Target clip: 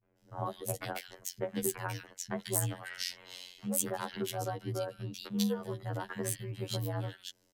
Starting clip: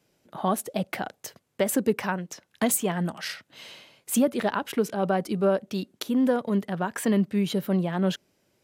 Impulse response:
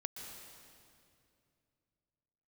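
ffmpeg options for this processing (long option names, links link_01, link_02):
-filter_complex "[0:a]atempo=1.1,acompressor=threshold=-27dB:ratio=6,afftfilt=real='hypot(re,im)*cos(PI*b)':imag='0':win_size=2048:overlap=0.75,afreqshift=-62,highshelf=frequency=6500:gain=-3,acrossover=split=170|2000[link_01][link_02][link_03];[link_02]adelay=30[link_04];[link_03]adelay=180[link_05];[link_01][link_04][link_05]amix=inputs=3:normalize=0,asetrate=45938,aresample=44100,adynamicequalizer=threshold=0.00158:dfrequency=3400:dqfactor=0.7:tfrequency=3400:tqfactor=0.7:attack=5:release=100:ratio=0.375:range=3:mode=boostabove:tftype=highshelf"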